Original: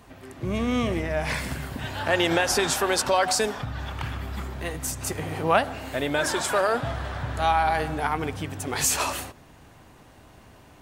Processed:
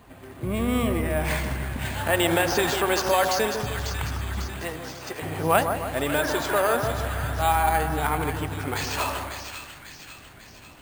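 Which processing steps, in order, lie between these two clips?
4.46–5.21 s: high-pass 110 Hz -> 410 Hz 12 dB/octave; two-band feedback delay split 1.5 kHz, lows 152 ms, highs 546 ms, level -7 dB; careless resampling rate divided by 4×, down filtered, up hold

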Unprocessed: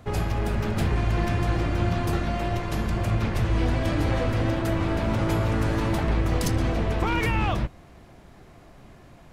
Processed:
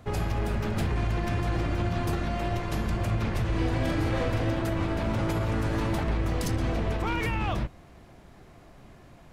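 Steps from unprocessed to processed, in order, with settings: peak limiter -17 dBFS, peak gain reduction 5 dB; 3.48–4.49 s: doubling 43 ms -4.5 dB; trim -2 dB

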